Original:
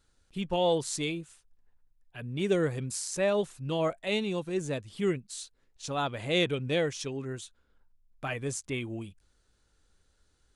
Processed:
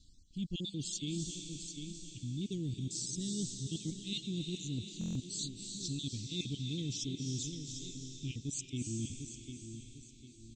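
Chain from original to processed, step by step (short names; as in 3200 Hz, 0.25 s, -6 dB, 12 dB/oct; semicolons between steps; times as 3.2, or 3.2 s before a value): random spectral dropouts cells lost 28%; elliptic band-stop 290–3700 Hz, stop band 50 dB; bell 670 Hz -12 dB 0.78 oct; feedback echo 0.75 s, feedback 35%, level -18 dB; reverse; compressor, threshold -46 dBFS, peak gain reduction 16 dB; reverse; steep low-pass 8200 Hz 96 dB/oct; on a send at -7 dB: tilt +2.5 dB/oct + reverb RT60 4.2 s, pre-delay 0.249 s; on the sum: stuck buffer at 4.99, samples 1024, times 6; gain +10 dB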